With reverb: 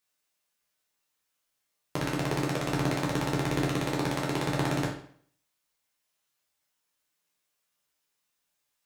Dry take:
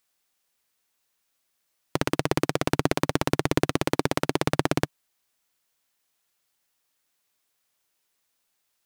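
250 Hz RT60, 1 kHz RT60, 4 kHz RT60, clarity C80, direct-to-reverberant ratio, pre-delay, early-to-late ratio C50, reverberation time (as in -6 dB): 0.55 s, 0.55 s, 0.50 s, 9.5 dB, -3.5 dB, 7 ms, 5.5 dB, 0.55 s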